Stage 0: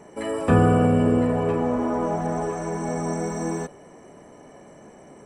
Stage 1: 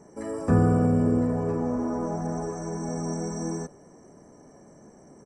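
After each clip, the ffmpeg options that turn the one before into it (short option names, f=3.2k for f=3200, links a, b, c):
-af "firequalizer=gain_entry='entry(210,0);entry(570,-5);entry(1600,-6);entry(3100,-21);entry(5400,4);entry(9400,-7)':delay=0.05:min_phase=1,volume=-2dB"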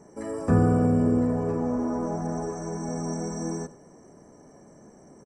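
-filter_complex "[0:a]asplit=2[a][b];[b]adelay=93.29,volume=-18dB,highshelf=f=4k:g=-2.1[c];[a][c]amix=inputs=2:normalize=0"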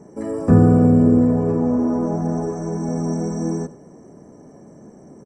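-af "equalizer=f=200:w=0.31:g=9"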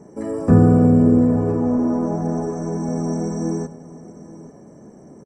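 -af "aecho=1:1:839:0.126"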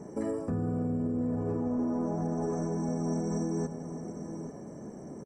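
-af "areverse,acompressor=threshold=-23dB:ratio=5,areverse,alimiter=limit=-23.5dB:level=0:latency=1:release=138"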